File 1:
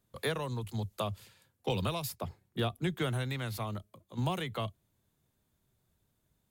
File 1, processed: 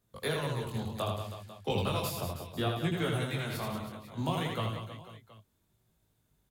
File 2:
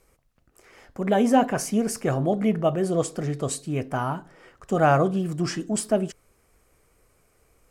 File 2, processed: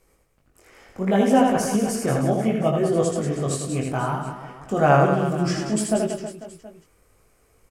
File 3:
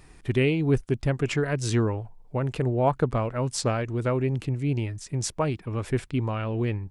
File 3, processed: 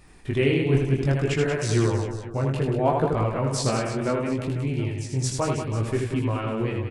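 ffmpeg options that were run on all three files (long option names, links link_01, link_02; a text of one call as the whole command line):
ffmpeg -i in.wav -filter_complex "[0:a]flanger=delay=18:depth=5:speed=0.67,asplit=2[link_01][link_02];[link_02]aecho=0:1:80|184|319.2|495|723.4:0.631|0.398|0.251|0.158|0.1[link_03];[link_01][link_03]amix=inputs=2:normalize=0,volume=3dB" out.wav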